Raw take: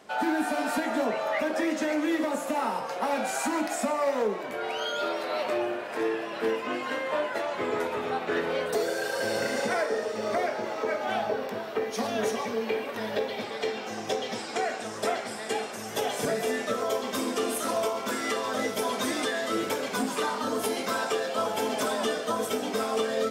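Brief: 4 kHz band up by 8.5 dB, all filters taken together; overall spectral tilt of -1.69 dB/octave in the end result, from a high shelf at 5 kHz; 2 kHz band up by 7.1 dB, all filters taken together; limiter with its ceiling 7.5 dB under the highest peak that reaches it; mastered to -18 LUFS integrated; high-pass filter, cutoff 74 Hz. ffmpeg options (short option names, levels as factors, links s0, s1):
-af "highpass=74,equalizer=f=2000:t=o:g=7,equalizer=f=4000:t=o:g=7,highshelf=f=5000:g=3.5,volume=3.16,alimiter=limit=0.335:level=0:latency=1"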